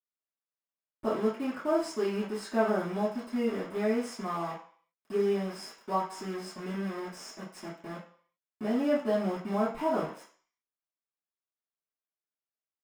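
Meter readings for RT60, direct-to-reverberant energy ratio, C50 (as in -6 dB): 0.50 s, -12.5 dB, 6.0 dB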